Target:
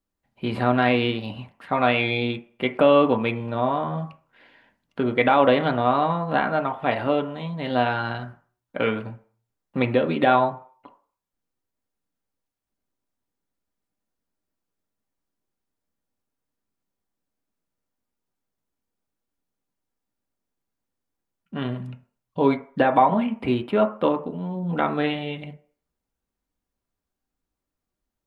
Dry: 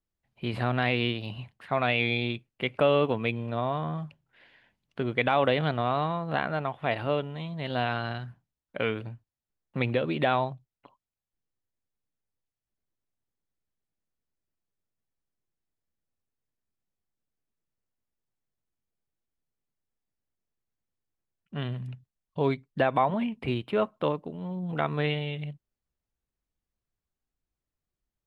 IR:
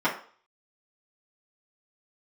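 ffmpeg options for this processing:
-filter_complex "[0:a]asplit=2[a][b];[b]lowpass=2.1k[c];[1:a]atrim=start_sample=2205[d];[c][d]afir=irnorm=-1:irlink=0,volume=-15dB[e];[a][e]amix=inputs=2:normalize=0,volume=3dB"

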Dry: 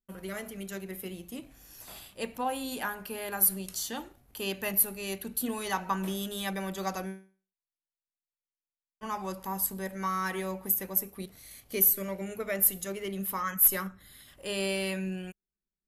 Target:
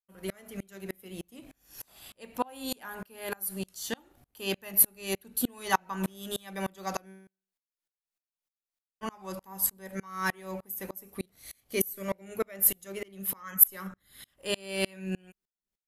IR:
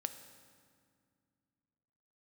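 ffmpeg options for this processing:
-af "lowshelf=f=190:g=-3.5,aeval=exprs='val(0)*pow(10,-32*if(lt(mod(-3.3*n/s,1),2*abs(-3.3)/1000),1-mod(-3.3*n/s,1)/(2*abs(-3.3)/1000),(mod(-3.3*n/s,1)-2*abs(-3.3)/1000)/(1-2*abs(-3.3)/1000))/20)':c=same,volume=8dB"

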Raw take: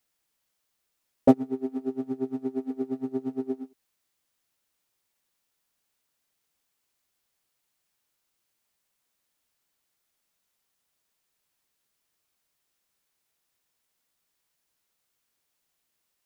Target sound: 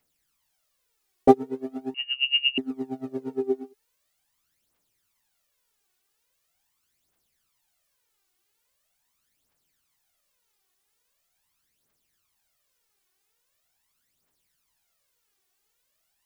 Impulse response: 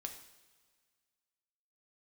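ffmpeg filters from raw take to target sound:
-filter_complex "[0:a]aphaser=in_gain=1:out_gain=1:delay=2.8:decay=0.64:speed=0.42:type=triangular,asettb=1/sr,asplit=3[a][b][c];[a]atrim=end=1.944[d];[b]atrim=start=1.94:end=2.58,asetpts=PTS-STARTPTS,afade=t=in:d=0.004:c=qsin,afade=t=out:st=0.636:d=0.004:c=qsin,lowpass=f=2.6k:t=q:w=0.5098,lowpass=f=2.6k:t=q:w=0.6013,lowpass=f=2.6k:t=q:w=0.9,lowpass=f=2.6k:t=q:w=2.563,afreqshift=-3100[e];[c]atrim=start=2.576[f];[d][e]acrossfade=d=0.004:c1=hsin:c2=qsin[g];[g][f]acrossfade=d=0.004:c1=qsin:c2=hsin,volume=1dB"

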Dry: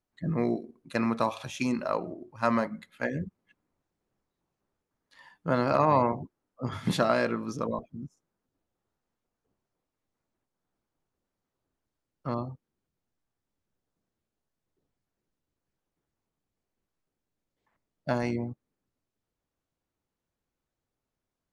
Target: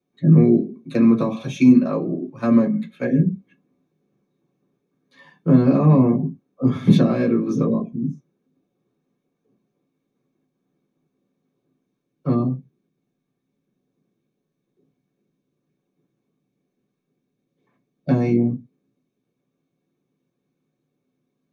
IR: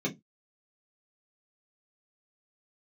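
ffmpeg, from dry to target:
-filter_complex "[1:a]atrim=start_sample=2205,atrim=end_sample=6174[a];[0:a][a]afir=irnorm=-1:irlink=0,acrossover=split=350[b][c];[c]acompressor=threshold=-28dB:ratio=3[d];[b][d]amix=inputs=2:normalize=0,volume=1dB"

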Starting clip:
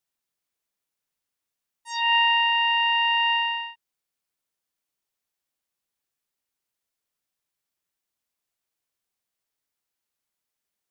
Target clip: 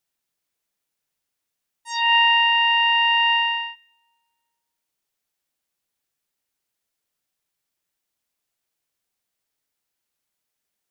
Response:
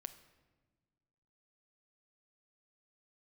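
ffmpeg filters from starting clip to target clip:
-filter_complex "[0:a]equalizer=f=1.1k:t=o:w=0.43:g=-2,asplit=2[a][b];[1:a]atrim=start_sample=2205[c];[b][c]afir=irnorm=-1:irlink=0,volume=-1dB[d];[a][d]amix=inputs=2:normalize=0"

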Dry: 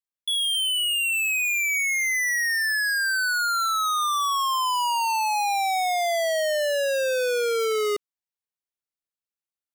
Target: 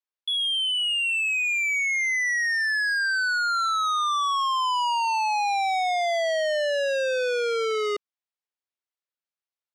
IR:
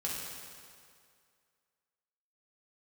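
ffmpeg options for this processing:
-af "highpass=380,lowpass=5k"

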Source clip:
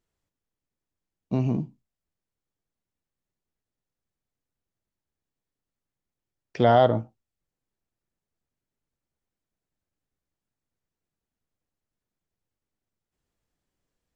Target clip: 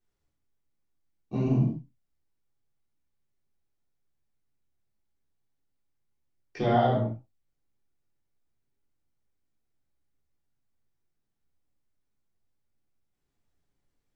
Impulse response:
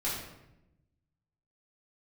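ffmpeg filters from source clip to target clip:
-filter_complex "[0:a]acompressor=threshold=-20dB:ratio=3[a];[1:a]atrim=start_sample=2205,afade=t=out:st=0.22:d=0.01,atrim=end_sample=10143[b];[a][b]afir=irnorm=-1:irlink=0,volume=-6dB"

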